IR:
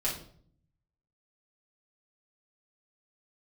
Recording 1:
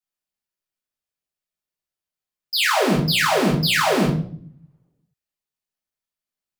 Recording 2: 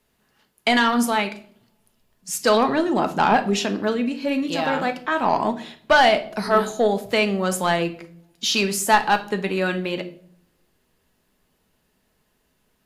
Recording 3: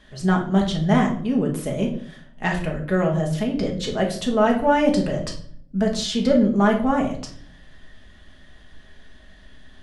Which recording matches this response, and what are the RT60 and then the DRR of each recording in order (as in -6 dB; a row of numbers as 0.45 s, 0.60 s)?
1; 0.55 s, 0.55 s, 0.55 s; -6.5 dB, 7.5 dB, -0.5 dB